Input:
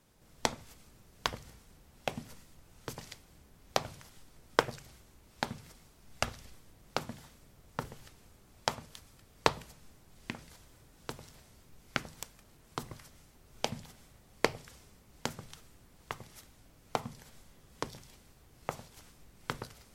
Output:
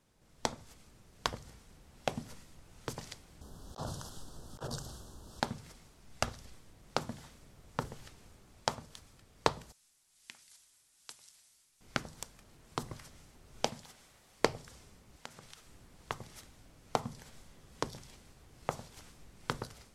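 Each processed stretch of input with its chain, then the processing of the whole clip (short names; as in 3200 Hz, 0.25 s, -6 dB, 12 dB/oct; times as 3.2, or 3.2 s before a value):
3.41–5.4 Butterworth band-stop 2200 Hz, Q 1.3 + negative-ratio compressor -45 dBFS
9.72–11.81 brick-wall FIR low-pass 12000 Hz + pre-emphasis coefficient 0.97 + notch 500 Hz, Q 6.7
13.69–14.41 low shelf 320 Hz -11.5 dB + mismatched tape noise reduction encoder only
15.16–15.67 low shelf 420 Hz -9 dB + compressor 3:1, threshold -49 dBFS
whole clip: LPF 11000 Hz 12 dB/oct; dynamic EQ 2400 Hz, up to -5 dB, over -55 dBFS, Q 1.3; AGC gain up to 6 dB; gain -4 dB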